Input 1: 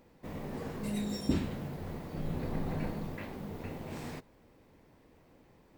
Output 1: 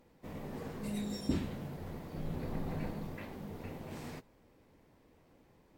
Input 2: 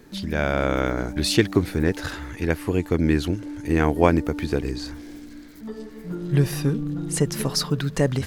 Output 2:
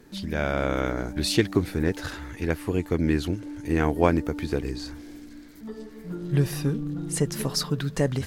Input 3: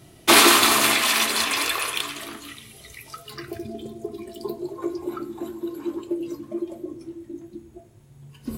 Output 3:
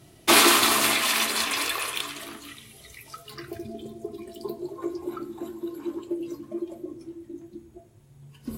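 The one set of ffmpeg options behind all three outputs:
-af "volume=0.708" -ar 48000 -c:a libvorbis -b:a 64k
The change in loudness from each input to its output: -3.0 LU, -3.0 LU, -3.0 LU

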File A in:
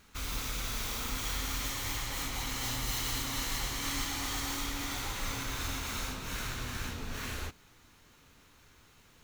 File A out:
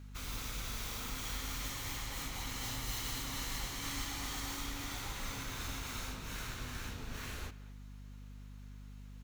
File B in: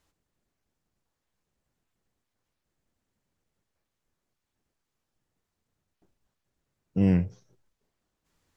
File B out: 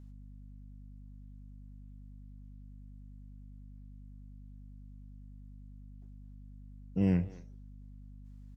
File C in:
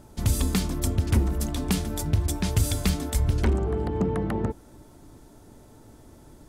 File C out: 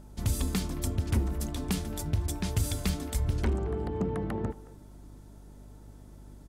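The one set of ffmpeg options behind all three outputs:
-filter_complex "[0:a]aeval=exprs='val(0)+0.00708*(sin(2*PI*50*n/s)+sin(2*PI*2*50*n/s)/2+sin(2*PI*3*50*n/s)/3+sin(2*PI*4*50*n/s)/4+sin(2*PI*5*50*n/s)/5)':c=same,asplit=2[s0][s1];[s1]adelay=220,highpass=300,lowpass=3400,asoftclip=type=hard:threshold=0.0891,volume=0.141[s2];[s0][s2]amix=inputs=2:normalize=0,volume=0.531"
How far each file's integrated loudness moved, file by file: -5.5 LU, -6.5 LU, -5.5 LU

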